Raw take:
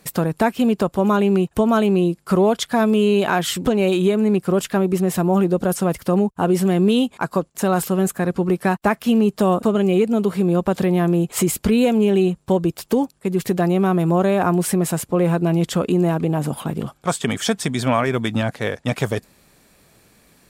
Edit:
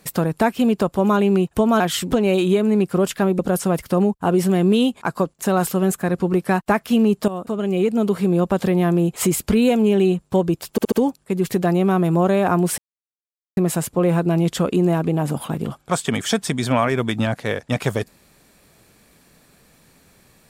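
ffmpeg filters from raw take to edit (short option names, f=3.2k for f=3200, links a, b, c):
-filter_complex "[0:a]asplit=8[a][b][c][d][e][f][g][h];[a]atrim=end=1.802[i];[b]atrim=start=3.338:end=4.932[j];[c]atrim=start=5.548:end=9.44,asetpts=PTS-STARTPTS,afade=t=out:st=3.888:d=0.004:c=hsin:silence=0.199526[k];[d]atrim=start=9.44:end=12.942,asetpts=PTS-STARTPTS,afade=t=in:d=0.75:silence=0.199526[l];[e]atrim=start=12.868:end=12.942[m];[f]atrim=start=12.868:end=12.942[n];[g]atrim=start=12.868:end=14.73,asetpts=PTS-STARTPTS,afade=t=out:st=1.858:d=0.004:c=hsin,apad=pad_dur=0.79[o];[h]atrim=start=14.73,asetpts=PTS-STARTPTS,afade=t=in:d=0.004:c=hsin[p];[i][j]acrossfade=d=0.004:c1=hsin:c2=hsin[q];[k][l]concat=n=2:v=0:a=1[r];[q][r]acrossfade=d=0.004:c1=hsin:c2=hsin[s];[s][m]acrossfade=d=0.004:c1=hsin:c2=hsin[t];[t][n]acrossfade=d=0.004:c1=hsin:c2=hsin[u];[o][p]concat=n=2:v=0:a=1[v];[u][v]acrossfade=d=0.004:c1=hsin:c2=hsin"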